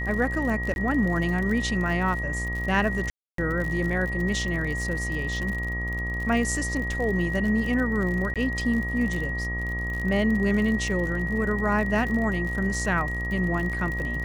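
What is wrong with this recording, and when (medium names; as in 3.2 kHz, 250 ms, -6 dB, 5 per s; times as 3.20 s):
buzz 60 Hz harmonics 21 -31 dBFS
crackle 63 per s -31 dBFS
whine 1.9 kHz -30 dBFS
0.74–0.76 s: dropout 21 ms
3.10–3.38 s: dropout 283 ms
8.34–8.36 s: dropout 17 ms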